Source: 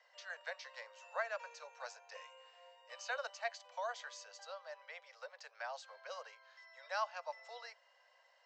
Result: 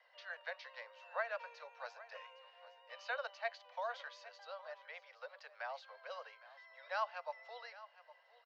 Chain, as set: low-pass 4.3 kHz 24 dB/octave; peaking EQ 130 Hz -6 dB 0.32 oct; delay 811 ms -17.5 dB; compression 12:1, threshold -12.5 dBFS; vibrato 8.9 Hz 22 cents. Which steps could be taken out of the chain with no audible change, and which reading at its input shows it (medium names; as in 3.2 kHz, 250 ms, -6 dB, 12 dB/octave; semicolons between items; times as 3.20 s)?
peaking EQ 130 Hz: input has nothing below 430 Hz; compression, threshold -12.5 dBFS: peak at its input -25.5 dBFS